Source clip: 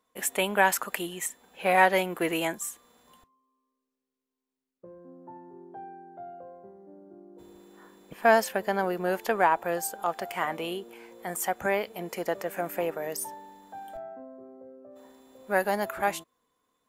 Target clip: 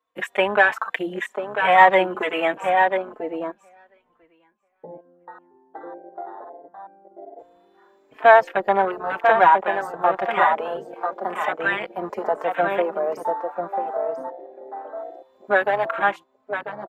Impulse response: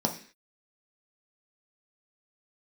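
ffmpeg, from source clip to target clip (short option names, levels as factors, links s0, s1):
-filter_complex "[0:a]asplit=2[s0][s1];[s1]acompressor=threshold=0.02:ratio=16,volume=0.891[s2];[s0][s2]amix=inputs=2:normalize=0,firequalizer=gain_entry='entry(420,0);entry(1000,4);entry(9900,-14)':delay=0.05:min_phase=1,acrossover=split=320[s3][s4];[s3]volume=59.6,asoftclip=hard,volume=0.0168[s5];[s4]acontrast=79[s6];[s5][s6]amix=inputs=2:normalize=0,asettb=1/sr,asplit=3[s7][s8][s9];[s7]atrim=end=2.694[s10];[s8]atrim=start=2.69:end=4.97,asetpts=PTS-STARTPTS,afade=t=in:d=0.004:c=qsin,afade=t=out:st=2.276:d=0.004:c=qsin,tiltshelf=f=750:g=7.5[s11];[s9]atrim=start=4.966[s12];[s10][s11]acrossfade=d=0.004:c1=hsin:c2=qsin[s13];[s13][s12]acrossfade=d=0.004:c1=qsin:c2=hsin,asplit=2[s14][s15];[s15]adelay=993,lowpass=f=2800:p=1,volume=0.562,asplit=2[s16][s17];[s17]adelay=993,lowpass=f=2800:p=1,volume=0.17,asplit=2[s18][s19];[s19]adelay=993,lowpass=f=2800:p=1,volume=0.17[s20];[s14][s16][s18][s20]amix=inputs=4:normalize=0,afwtdn=0.0631,asplit=2[s21][s22];[s22]adelay=4,afreqshift=1.2[s23];[s21][s23]amix=inputs=2:normalize=1,volume=1.12"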